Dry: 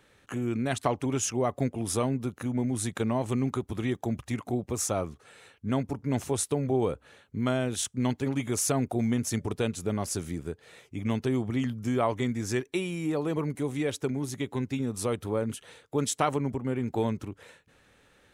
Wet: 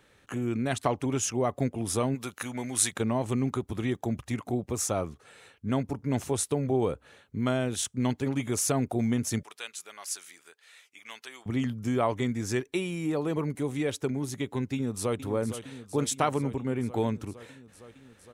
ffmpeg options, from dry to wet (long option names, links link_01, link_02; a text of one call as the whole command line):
ffmpeg -i in.wav -filter_complex "[0:a]asplit=3[link_01][link_02][link_03];[link_01]afade=type=out:start_time=2.14:duration=0.02[link_04];[link_02]tiltshelf=frequency=650:gain=-10,afade=type=in:start_time=2.14:duration=0.02,afade=type=out:start_time=2.92:duration=0.02[link_05];[link_03]afade=type=in:start_time=2.92:duration=0.02[link_06];[link_04][link_05][link_06]amix=inputs=3:normalize=0,asettb=1/sr,asplit=3[link_07][link_08][link_09];[link_07]atrim=end=9.434[link_10];[link_08]atrim=start=9.43:end=11.46,asetpts=PTS-STARTPTS,afade=type=in:duration=0.004:curve=qsin,afade=type=out:start_time=2.026:duration=0.004:curve=qsin,highpass=1500[link_11];[link_09]atrim=start=11.456[link_12];[link_10][link_11]acrossfade=duration=0.004:curve1=hsin:curve2=qsin[link_13];[link_13][link_12]acrossfade=duration=0.004:curve1=qsin:curve2=hsin,asplit=2[link_14][link_15];[link_15]afade=type=in:start_time=14.73:duration=0.01,afade=type=out:start_time=15.19:duration=0.01,aecho=0:1:460|920|1380|1840|2300|2760|3220|3680|4140|4600|5060|5520:0.266073|0.212858|0.170286|0.136229|0.108983|0.0871866|0.0697493|0.0557994|0.0446396|0.0357116|0.0285693|0.0228555[link_16];[link_14][link_16]amix=inputs=2:normalize=0" out.wav